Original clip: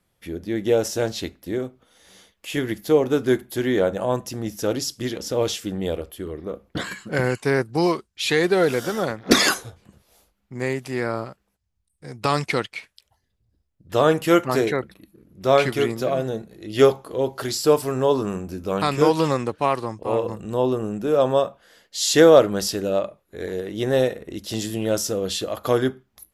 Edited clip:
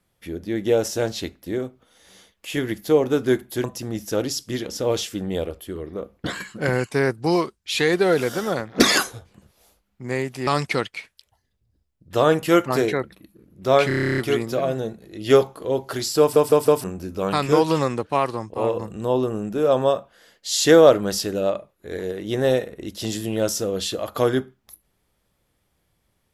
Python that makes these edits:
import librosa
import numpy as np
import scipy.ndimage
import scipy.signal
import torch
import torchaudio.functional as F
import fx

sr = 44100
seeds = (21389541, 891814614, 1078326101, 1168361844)

y = fx.edit(x, sr, fx.cut(start_s=3.64, length_s=0.51),
    fx.cut(start_s=10.98, length_s=1.28),
    fx.stutter(start_s=15.67, slice_s=0.03, count=11),
    fx.stutter_over(start_s=17.69, slice_s=0.16, count=4), tone=tone)